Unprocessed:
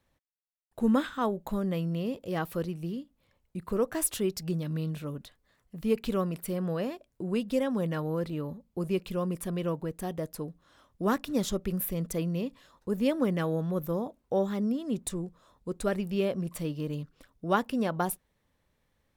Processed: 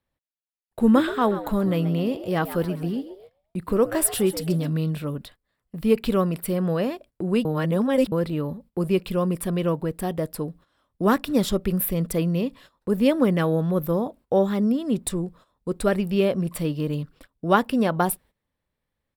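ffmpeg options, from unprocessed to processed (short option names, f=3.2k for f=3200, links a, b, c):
-filter_complex "[0:a]asplit=3[a][b][c];[a]afade=t=out:st=0.94:d=0.02[d];[b]asplit=5[e][f][g][h][i];[f]adelay=131,afreqshift=100,volume=-13dB[j];[g]adelay=262,afreqshift=200,volume=-21.2dB[k];[h]adelay=393,afreqshift=300,volume=-29.4dB[l];[i]adelay=524,afreqshift=400,volume=-37.5dB[m];[e][j][k][l][m]amix=inputs=5:normalize=0,afade=t=in:st=0.94:d=0.02,afade=t=out:st=4.69:d=0.02[n];[c]afade=t=in:st=4.69:d=0.02[o];[d][n][o]amix=inputs=3:normalize=0,asplit=3[p][q][r];[p]atrim=end=7.452[s];[q]atrim=start=7.448:end=8.122,asetpts=PTS-STARTPTS,areverse[t];[r]atrim=start=8.118[u];[s][t]acrossfade=d=0.004:c1=hsin:c2=hsin[v];[v][u]acrossfade=d=0.004:c1=hsin:c2=hsin,agate=range=-15dB:threshold=-54dB:ratio=16:detection=peak,equalizer=f=6.4k:w=4.9:g=-11,volume=7.5dB"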